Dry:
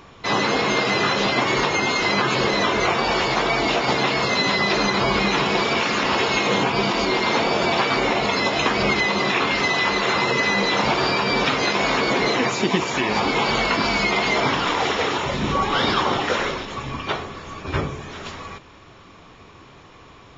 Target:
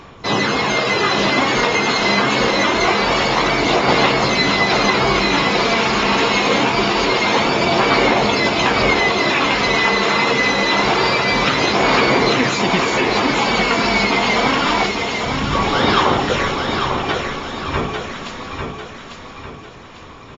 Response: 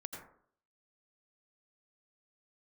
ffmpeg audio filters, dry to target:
-filter_complex "[0:a]asettb=1/sr,asplit=3[link_01][link_02][link_03];[link_01]atrim=end=14.864[link_04];[link_02]atrim=start=14.86:end=15.53,asetpts=PTS-STARTPTS,afade=type=in:duration=0.004:curve=qsin,afade=type=out:start_time=0.666:duration=0.004:curve=qsin,equalizer=frequency=1000:width_type=o:width=2.8:gain=-14[link_05];[link_03]atrim=start=15.526[link_06];[link_04][link_05]acrossfade=duration=0.004:curve1=hsin:curve2=qsin[link_07];[link_07][link_06]acrossfade=duration=0.004:curve1=qsin:curve2=hsin,aphaser=in_gain=1:out_gain=1:delay=4.5:decay=0.34:speed=0.25:type=sinusoidal,aecho=1:1:848|1696|2544|3392|4240:0.531|0.223|0.0936|0.0393|0.0165,volume=2.5dB"

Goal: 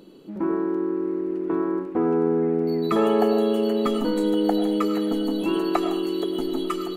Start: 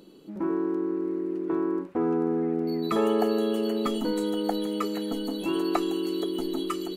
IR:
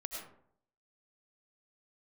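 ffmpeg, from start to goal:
-filter_complex "[0:a]asplit=2[link_01][link_02];[1:a]atrim=start_sample=2205,lowpass=4200[link_03];[link_02][link_03]afir=irnorm=-1:irlink=0,volume=-2dB[link_04];[link_01][link_04]amix=inputs=2:normalize=0"

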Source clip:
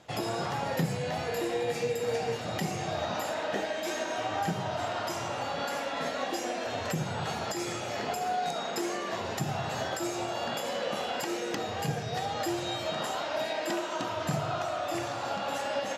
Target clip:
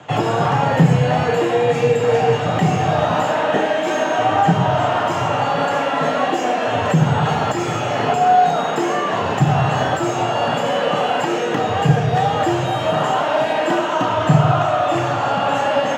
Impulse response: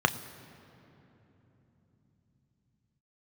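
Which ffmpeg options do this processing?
-filter_complex "[0:a]lowpass=9000,acrossover=split=160|1100[link_01][link_02][link_03];[link_03]asoftclip=type=tanh:threshold=-37.5dB[link_04];[link_01][link_02][link_04]amix=inputs=3:normalize=0[link_05];[1:a]atrim=start_sample=2205,atrim=end_sample=6174[link_06];[link_05][link_06]afir=irnorm=-1:irlink=0,volume=2.5dB"

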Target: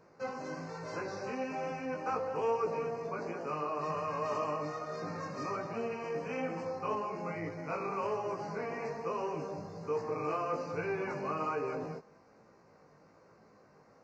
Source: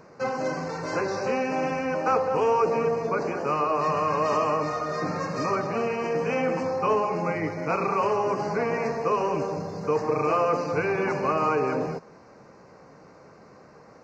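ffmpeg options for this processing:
ffmpeg -i in.wav -af "flanger=delay=17.5:depth=2.7:speed=1.2,volume=-8dB" out.wav

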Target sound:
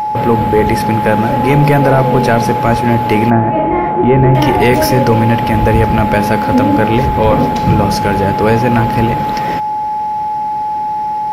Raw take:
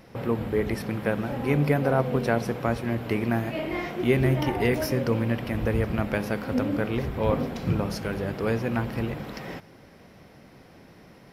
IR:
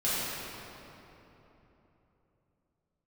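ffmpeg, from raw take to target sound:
-filter_complex "[0:a]asettb=1/sr,asplit=3[link_01][link_02][link_03];[link_01]atrim=end=3.304[link_04];[link_02]atrim=start=3.3:end=4.35,asetpts=PTS-STARTPTS,afade=type=in:duration=0.004:curve=qsin,afade=type=out:start_time=1.046:duration=0.004:curve=qsin,lowpass=1300[link_05];[link_03]atrim=start=4.346[link_06];[link_04][link_05]acrossfade=duration=0.004:curve1=hsin:curve2=qsin[link_07];[link_07][link_06]acrossfade=duration=0.004:curve1=qsin:curve2=hsin,apsyclip=19.5dB,aeval=exprs='val(0)+0.316*sin(2*PI*850*n/s)':channel_layout=same,volume=-4dB"

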